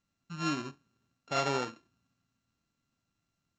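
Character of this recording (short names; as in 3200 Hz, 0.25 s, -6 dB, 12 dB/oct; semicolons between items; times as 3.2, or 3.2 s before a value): a buzz of ramps at a fixed pitch in blocks of 32 samples; SBC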